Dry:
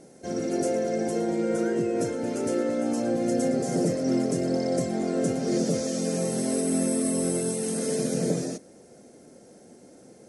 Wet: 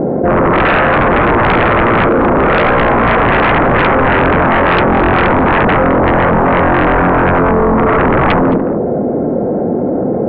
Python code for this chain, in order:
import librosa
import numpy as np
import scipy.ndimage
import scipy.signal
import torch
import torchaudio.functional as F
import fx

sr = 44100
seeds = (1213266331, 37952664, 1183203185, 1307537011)

y = scipy.signal.sosfilt(scipy.signal.butter(4, 1100.0, 'lowpass', fs=sr, output='sos'), x)
y = fx.fold_sine(y, sr, drive_db=16, ceiling_db=-13.5)
y = y + 10.0 ** (-19.5 / 20.0) * np.pad(y, (int(218 * sr / 1000.0), 0))[:len(y)]
y = fx.env_flatten(y, sr, amount_pct=70)
y = y * librosa.db_to_amplitude(6.0)